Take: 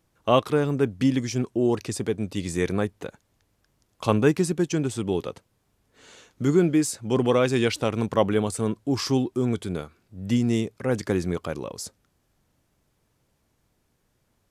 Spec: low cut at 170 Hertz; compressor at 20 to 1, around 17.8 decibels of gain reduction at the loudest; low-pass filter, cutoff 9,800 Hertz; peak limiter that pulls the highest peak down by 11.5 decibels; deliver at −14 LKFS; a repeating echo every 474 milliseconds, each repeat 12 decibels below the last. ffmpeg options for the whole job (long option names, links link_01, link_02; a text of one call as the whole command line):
ffmpeg -i in.wav -af "highpass=170,lowpass=9800,acompressor=threshold=-32dB:ratio=20,alimiter=level_in=4.5dB:limit=-24dB:level=0:latency=1,volume=-4.5dB,aecho=1:1:474|948|1422:0.251|0.0628|0.0157,volume=26dB" out.wav